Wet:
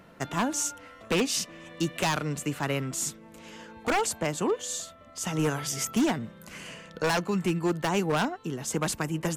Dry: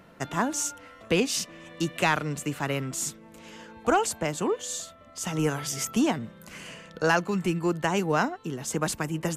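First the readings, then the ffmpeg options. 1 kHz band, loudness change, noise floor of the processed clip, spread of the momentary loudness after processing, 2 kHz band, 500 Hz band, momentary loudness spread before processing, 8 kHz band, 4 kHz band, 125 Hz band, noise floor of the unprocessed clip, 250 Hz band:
−2.5 dB, −1.0 dB, −51 dBFS, 15 LU, −2.5 dB, −1.5 dB, 16 LU, 0.0 dB, +0.5 dB, −0.5 dB, −51 dBFS, −0.5 dB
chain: -af "aeval=exprs='0.119*(abs(mod(val(0)/0.119+3,4)-2)-1)':channel_layout=same"

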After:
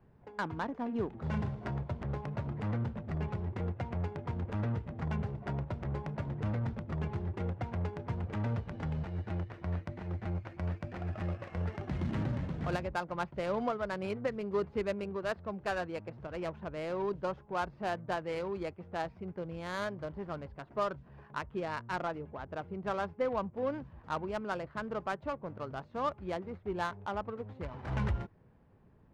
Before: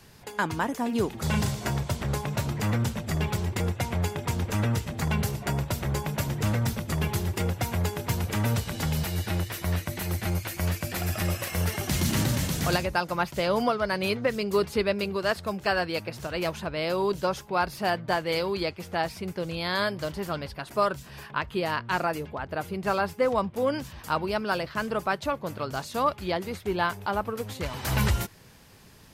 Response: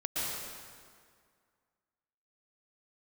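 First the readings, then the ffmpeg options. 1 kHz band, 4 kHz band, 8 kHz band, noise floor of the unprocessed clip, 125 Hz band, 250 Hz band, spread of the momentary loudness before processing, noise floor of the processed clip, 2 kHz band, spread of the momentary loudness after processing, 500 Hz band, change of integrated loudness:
−8.5 dB, −17.5 dB, below −20 dB, −48 dBFS, −7.5 dB, −7.5 dB, 6 LU, −60 dBFS, −11.5 dB, 6 LU, −8.0 dB, −8.5 dB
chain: -af "lowpass=frequency=2800:poles=1,adynamicsmooth=sensitivity=2:basefreq=1100,volume=-7.5dB"

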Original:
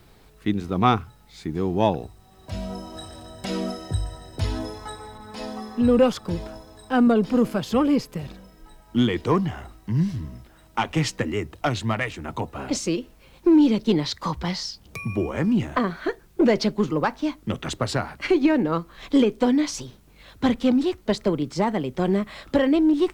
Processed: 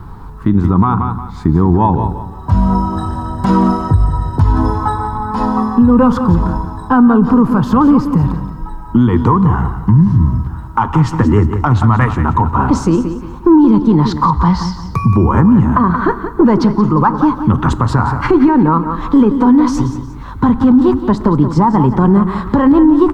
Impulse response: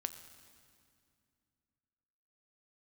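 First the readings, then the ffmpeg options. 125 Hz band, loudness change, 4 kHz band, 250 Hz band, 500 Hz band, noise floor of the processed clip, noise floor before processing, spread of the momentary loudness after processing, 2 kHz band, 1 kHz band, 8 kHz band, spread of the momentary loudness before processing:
+16.5 dB, +11.0 dB, −2.0 dB, +12.0 dB, +6.0 dB, −28 dBFS, −53 dBFS, 9 LU, +6.5 dB, +14.0 dB, can't be measured, 16 LU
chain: -filter_complex "[0:a]firequalizer=gain_entry='entry(110,0);entry(630,-18);entry(940,4);entry(2200,-23)':delay=0.05:min_phase=1,acompressor=threshold=-28dB:ratio=6,aecho=1:1:177|354|531:0.266|0.0851|0.0272,asplit=2[link_01][link_02];[1:a]atrim=start_sample=2205,afade=type=out:start_time=0.4:duration=0.01,atrim=end_sample=18081[link_03];[link_02][link_03]afir=irnorm=-1:irlink=0,volume=-1dB[link_04];[link_01][link_04]amix=inputs=2:normalize=0,alimiter=level_in=20dB:limit=-1dB:release=50:level=0:latency=1,volume=-1dB"

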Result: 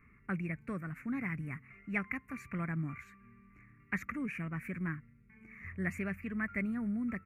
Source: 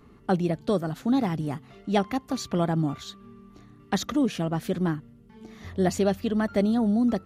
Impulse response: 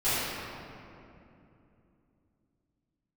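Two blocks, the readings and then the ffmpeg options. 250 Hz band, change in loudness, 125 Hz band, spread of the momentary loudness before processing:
−12.5 dB, −11.5 dB, −10.0 dB, 10 LU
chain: -af "firequalizer=gain_entry='entry(110,0);entry(230,-5);entry(350,-11);entry(800,-17);entry(1100,-2);entry(2300,15);entry(3300,-30);entry(7800,-10);entry(11000,-7)':delay=0.05:min_phase=1,volume=-7.5dB"

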